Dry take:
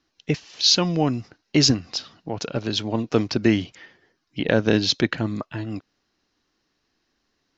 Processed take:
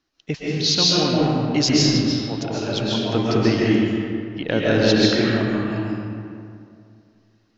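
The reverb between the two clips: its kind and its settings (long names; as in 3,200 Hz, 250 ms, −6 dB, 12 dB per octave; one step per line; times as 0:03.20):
comb and all-pass reverb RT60 2.4 s, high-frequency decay 0.55×, pre-delay 95 ms, DRR −6.5 dB
level −3.5 dB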